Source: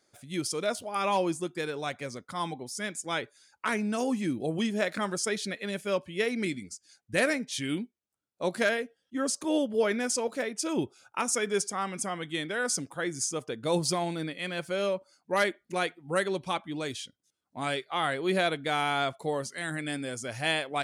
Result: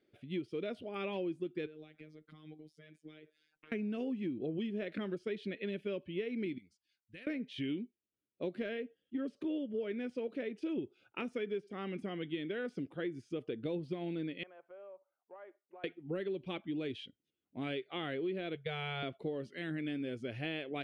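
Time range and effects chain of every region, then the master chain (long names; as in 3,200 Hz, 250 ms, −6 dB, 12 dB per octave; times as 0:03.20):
0:01.66–0:03.72: parametric band 910 Hz −6.5 dB 0.3 octaves + downward compressor 16 to 1, threshold −44 dBFS + phases set to zero 154 Hz
0:06.58–0:07.27: guitar amp tone stack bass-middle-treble 5-5-5 + downward compressor 4 to 1, threshold −42 dBFS
0:14.43–0:15.84: flat-topped band-pass 890 Hz, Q 1.7 + downward compressor 2 to 1, threshold −47 dBFS
0:18.55–0:19.03: elliptic band-stop filter 200–450 Hz + downward expander −43 dBFS + bass and treble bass +6 dB, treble 0 dB
whole clip: de-essing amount 75%; drawn EQ curve 140 Hz 0 dB, 380 Hz +6 dB, 940 Hz −14 dB, 2,900 Hz +1 dB, 7,000 Hz −29 dB, 13,000 Hz −26 dB; downward compressor 10 to 1, threshold −31 dBFS; level −3 dB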